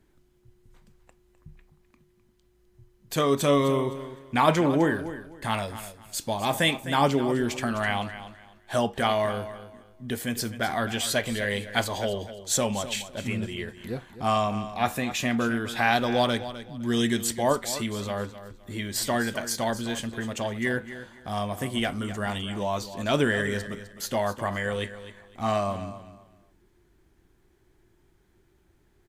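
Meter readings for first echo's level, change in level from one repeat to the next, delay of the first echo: -13.0 dB, -12.0 dB, 0.256 s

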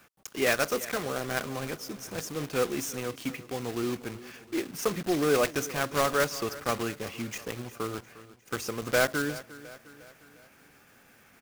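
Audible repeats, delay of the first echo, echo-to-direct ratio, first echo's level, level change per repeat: 3, 0.355 s, -16.0 dB, -17.5 dB, -6.0 dB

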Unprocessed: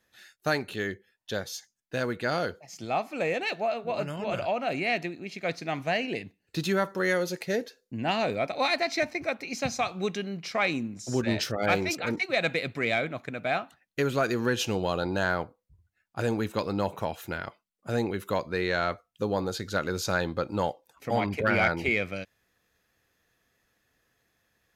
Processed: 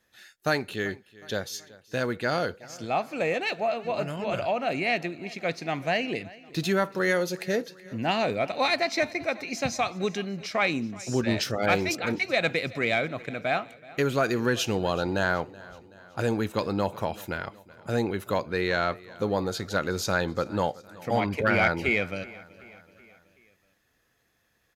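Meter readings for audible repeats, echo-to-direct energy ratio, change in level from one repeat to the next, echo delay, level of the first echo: 3, -19.5 dB, -5.5 dB, 0.377 s, -21.0 dB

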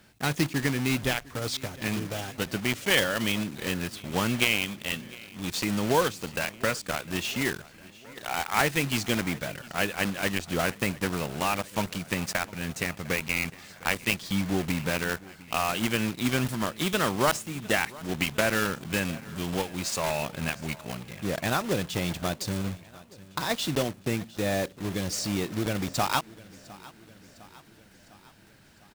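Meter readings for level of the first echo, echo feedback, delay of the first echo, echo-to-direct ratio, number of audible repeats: -21.0 dB, 59%, 0.705 s, -19.0 dB, 4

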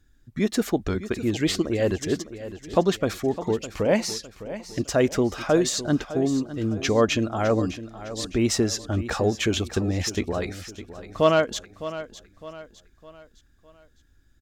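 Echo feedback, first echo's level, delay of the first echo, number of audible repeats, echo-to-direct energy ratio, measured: 42%, -13.5 dB, 0.608 s, 3, -12.5 dB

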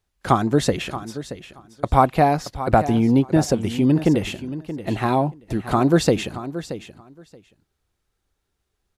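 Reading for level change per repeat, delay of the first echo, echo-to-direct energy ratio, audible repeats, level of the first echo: -16.5 dB, 0.627 s, -13.0 dB, 2, -13.0 dB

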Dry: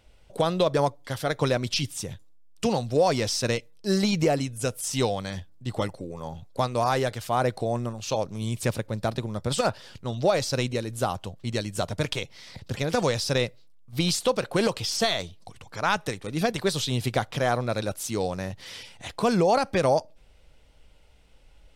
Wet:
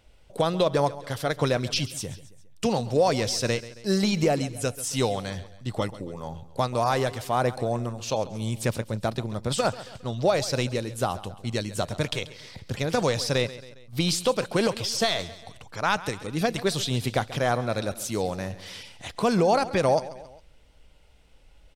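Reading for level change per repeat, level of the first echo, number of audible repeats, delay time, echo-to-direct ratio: -6.0 dB, -16.5 dB, 3, 0.136 s, -15.5 dB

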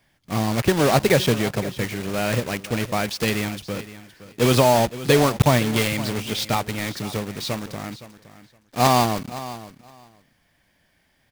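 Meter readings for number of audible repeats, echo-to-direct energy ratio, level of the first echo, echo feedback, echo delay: 2, -15.5 dB, -15.5 dB, 16%, 0.516 s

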